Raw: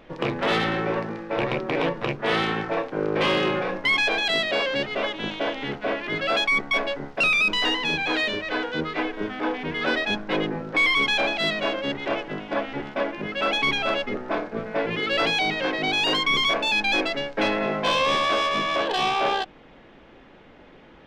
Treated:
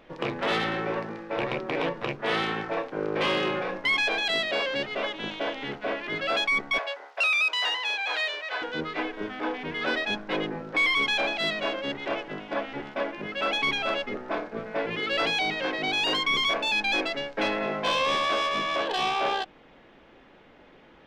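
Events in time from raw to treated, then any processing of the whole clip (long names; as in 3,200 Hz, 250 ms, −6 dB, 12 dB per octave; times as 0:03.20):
0:06.78–0:08.62: high-pass filter 570 Hz 24 dB per octave
whole clip: low-shelf EQ 250 Hz −4.5 dB; level −3 dB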